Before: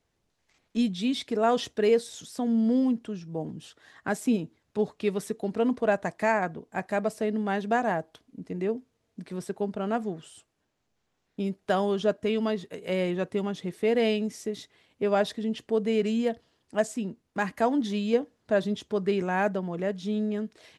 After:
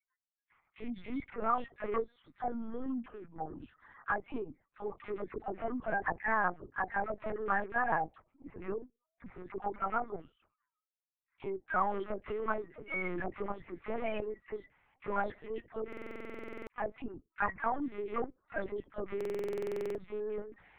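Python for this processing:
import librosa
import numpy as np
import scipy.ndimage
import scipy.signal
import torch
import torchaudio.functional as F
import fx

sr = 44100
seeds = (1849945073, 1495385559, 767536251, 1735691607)

y = fx.spec_quant(x, sr, step_db=30)
y = fx.noise_reduce_blind(y, sr, reduce_db=29)
y = fx.level_steps(y, sr, step_db=10)
y = 10.0 ** (-19.5 / 20.0) * np.tanh(y / 10.0 ** (-19.5 / 20.0))
y = fx.cabinet(y, sr, low_hz=170.0, low_slope=12, high_hz=2200.0, hz=(210.0, 330.0, 530.0, 780.0, 1200.0, 2100.0), db=(-9, -3, -10, 4, 10, 6))
y = fx.dispersion(y, sr, late='lows', ms=67.0, hz=830.0)
y = fx.lpc_vocoder(y, sr, seeds[0], excitation='pitch_kept', order=10)
y = fx.buffer_glitch(y, sr, at_s=(15.88, 19.16), block=2048, repeats=16)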